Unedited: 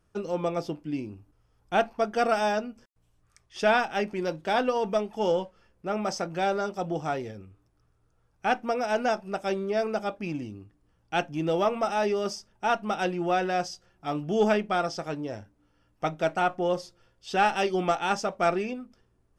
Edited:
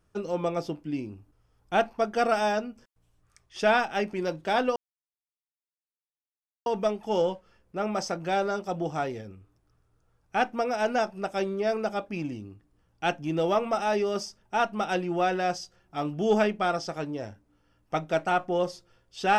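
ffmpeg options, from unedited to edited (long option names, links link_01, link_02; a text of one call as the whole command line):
ffmpeg -i in.wav -filter_complex "[0:a]asplit=2[link_01][link_02];[link_01]atrim=end=4.76,asetpts=PTS-STARTPTS,afade=type=out:start_time=4.756:duration=0.004:curve=hsin,apad=pad_dur=1.9[link_03];[link_02]atrim=start=4.76,asetpts=PTS-STARTPTS,afade=type=in:duration=0.004:curve=hsin[link_04];[link_03][link_04]concat=n=2:v=0:a=1" out.wav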